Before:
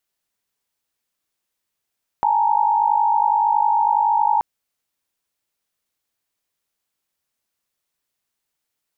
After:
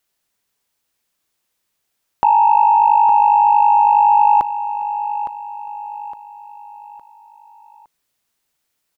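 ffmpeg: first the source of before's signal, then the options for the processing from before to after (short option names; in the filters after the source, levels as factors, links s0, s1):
-f lavfi -i "aevalsrc='0.112*(sin(2*PI*830.61*t)+sin(2*PI*880*t)+sin(2*PI*932.33*t))':d=2.18:s=44100"
-af "acontrast=60,aecho=1:1:862|1724|2586|3448:0.282|0.118|0.0497|0.0209"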